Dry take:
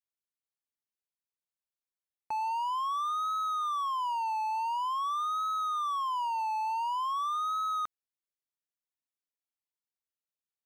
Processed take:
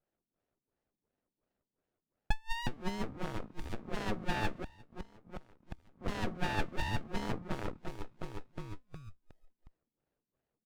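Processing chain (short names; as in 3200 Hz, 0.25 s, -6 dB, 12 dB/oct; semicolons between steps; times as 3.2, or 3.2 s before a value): on a send: feedback echo 0.363 s, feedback 41%, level -3 dB; on the sum: overdrive pedal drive 28 dB, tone 1800 Hz, clips at -20 dBFS; LFO low-pass sine 2.8 Hz 200–2400 Hz; 4.47–6.08 flipped gate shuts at -23 dBFS, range -24 dB; band shelf 2600 Hz -9.5 dB 3 oct; running maximum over 33 samples; gain +2.5 dB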